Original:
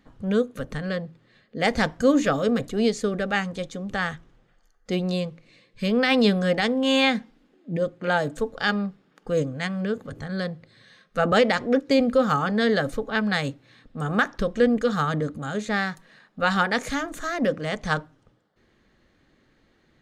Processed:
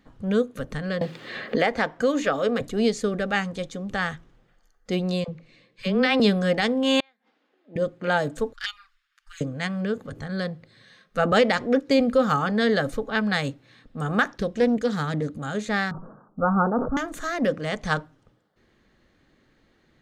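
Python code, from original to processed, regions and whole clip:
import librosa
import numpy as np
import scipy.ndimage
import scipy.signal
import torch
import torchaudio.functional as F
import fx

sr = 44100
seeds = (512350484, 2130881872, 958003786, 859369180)

y = fx.chain(x, sr, fx.bass_treble(bass_db=-11, treble_db=-8),
    fx.band_squash(depth_pct=100), at=(1.01, 2.61))
y = fx.chain(y, sr, fx.high_shelf(hz=8200.0, db=-11.0),
    fx.dispersion(late='lows', ms=44.0, hz=530.0), at=(5.24, 6.2))
y = fx.chain(y, sr, fx.highpass(hz=560.0, slope=12),
    fx.air_absorb(metres=120.0),
    fx.gate_flip(shuts_db=-21.0, range_db=-37), at=(7.0, 7.76))
y = fx.chain(y, sr, fx.cheby2_bandstop(low_hz=160.0, high_hz=550.0, order=4, stop_db=60),
    fx.env_flanger(rest_ms=9.4, full_db=-23.5), at=(8.53, 9.41))
y = fx.chain(y, sr, fx.highpass(hz=52.0, slope=12),
    fx.peak_eq(hz=1100.0, db=-6.5, octaves=1.4),
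    fx.doppler_dist(depth_ms=0.17), at=(14.33, 15.37))
y = fx.chain(y, sr, fx.steep_lowpass(hz=1400.0, slope=96),
    fx.low_shelf(hz=390.0, db=5.0),
    fx.sustainer(db_per_s=76.0), at=(15.91, 16.97))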